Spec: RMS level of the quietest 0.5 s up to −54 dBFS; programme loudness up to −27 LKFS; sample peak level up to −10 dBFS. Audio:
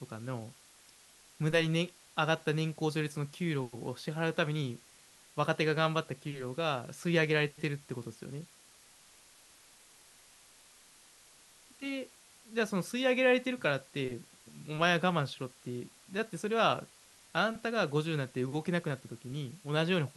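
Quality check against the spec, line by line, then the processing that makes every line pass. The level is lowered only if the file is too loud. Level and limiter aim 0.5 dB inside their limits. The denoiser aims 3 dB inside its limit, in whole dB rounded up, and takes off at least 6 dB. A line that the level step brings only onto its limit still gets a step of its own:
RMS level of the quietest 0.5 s −60 dBFS: in spec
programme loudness −33.0 LKFS: in spec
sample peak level −12.0 dBFS: in spec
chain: no processing needed

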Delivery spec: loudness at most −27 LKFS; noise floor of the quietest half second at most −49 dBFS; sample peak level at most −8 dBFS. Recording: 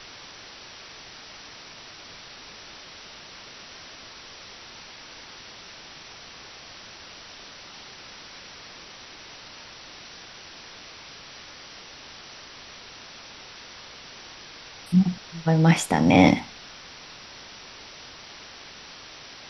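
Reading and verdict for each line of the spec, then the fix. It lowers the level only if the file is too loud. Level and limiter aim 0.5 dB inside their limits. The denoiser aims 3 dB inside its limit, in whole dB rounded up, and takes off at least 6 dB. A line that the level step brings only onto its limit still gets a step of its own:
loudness −20.5 LKFS: out of spec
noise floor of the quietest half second −44 dBFS: out of spec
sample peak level −3.5 dBFS: out of spec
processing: level −7 dB

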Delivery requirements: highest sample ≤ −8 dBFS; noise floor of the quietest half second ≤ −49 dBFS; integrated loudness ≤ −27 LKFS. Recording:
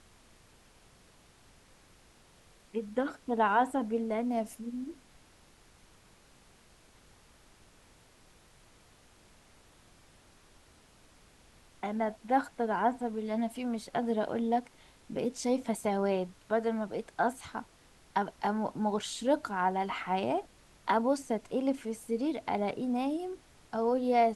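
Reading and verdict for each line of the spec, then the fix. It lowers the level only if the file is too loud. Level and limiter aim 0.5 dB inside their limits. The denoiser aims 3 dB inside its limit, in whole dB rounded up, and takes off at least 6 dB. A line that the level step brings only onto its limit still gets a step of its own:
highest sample −15.0 dBFS: in spec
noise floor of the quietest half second −61 dBFS: in spec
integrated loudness −32.5 LKFS: in spec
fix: no processing needed

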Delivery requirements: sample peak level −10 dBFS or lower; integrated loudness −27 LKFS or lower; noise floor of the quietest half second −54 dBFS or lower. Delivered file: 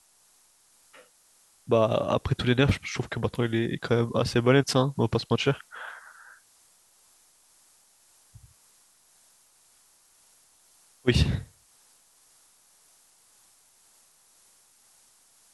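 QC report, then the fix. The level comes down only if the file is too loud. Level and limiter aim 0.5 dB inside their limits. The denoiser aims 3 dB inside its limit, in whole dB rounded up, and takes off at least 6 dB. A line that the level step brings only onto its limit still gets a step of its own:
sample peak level −7.0 dBFS: out of spec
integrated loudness −25.5 LKFS: out of spec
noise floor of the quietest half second −62 dBFS: in spec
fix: level −2 dB
brickwall limiter −10.5 dBFS

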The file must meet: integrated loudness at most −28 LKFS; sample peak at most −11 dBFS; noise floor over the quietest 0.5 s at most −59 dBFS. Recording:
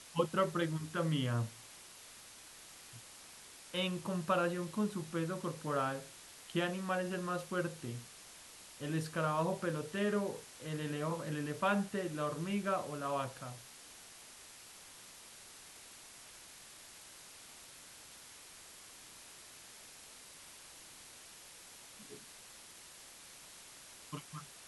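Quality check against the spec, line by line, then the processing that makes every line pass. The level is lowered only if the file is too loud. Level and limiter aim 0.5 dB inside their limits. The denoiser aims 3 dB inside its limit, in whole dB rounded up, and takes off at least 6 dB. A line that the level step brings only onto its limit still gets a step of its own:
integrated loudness −37.0 LKFS: in spec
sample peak −18.5 dBFS: in spec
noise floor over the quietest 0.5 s −55 dBFS: out of spec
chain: broadband denoise 7 dB, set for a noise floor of −55 dBFS

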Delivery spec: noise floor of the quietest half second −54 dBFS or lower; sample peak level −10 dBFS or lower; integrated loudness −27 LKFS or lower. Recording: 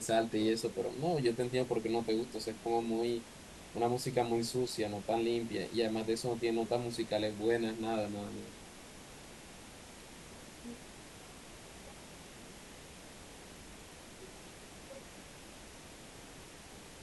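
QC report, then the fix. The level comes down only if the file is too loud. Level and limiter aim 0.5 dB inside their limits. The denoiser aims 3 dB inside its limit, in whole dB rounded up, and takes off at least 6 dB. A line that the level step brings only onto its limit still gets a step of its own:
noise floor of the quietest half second −52 dBFS: out of spec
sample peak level −16.5 dBFS: in spec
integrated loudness −35.0 LKFS: in spec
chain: broadband denoise 6 dB, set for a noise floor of −52 dBFS

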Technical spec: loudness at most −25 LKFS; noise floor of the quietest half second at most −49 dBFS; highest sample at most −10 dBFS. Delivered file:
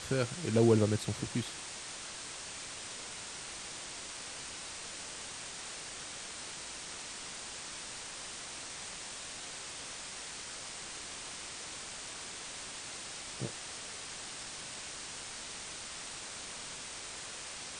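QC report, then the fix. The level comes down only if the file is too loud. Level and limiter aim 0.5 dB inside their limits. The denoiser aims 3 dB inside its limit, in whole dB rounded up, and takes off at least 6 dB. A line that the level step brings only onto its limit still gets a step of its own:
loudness −38.5 LKFS: in spec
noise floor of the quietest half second −44 dBFS: out of spec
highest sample −14.0 dBFS: in spec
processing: broadband denoise 8 dB, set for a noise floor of −44 dBFS

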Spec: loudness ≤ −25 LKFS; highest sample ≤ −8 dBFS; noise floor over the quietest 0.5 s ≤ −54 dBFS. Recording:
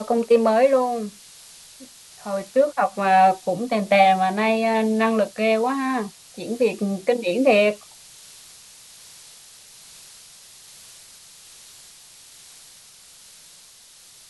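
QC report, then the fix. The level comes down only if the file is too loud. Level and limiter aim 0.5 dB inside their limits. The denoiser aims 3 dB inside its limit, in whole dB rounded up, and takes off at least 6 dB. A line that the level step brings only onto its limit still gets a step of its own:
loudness −20.0 LKFS: out of spec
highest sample −4.0 dBFS: out of spec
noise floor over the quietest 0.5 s −49 dBFS: out of spec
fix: level −5.5 dB

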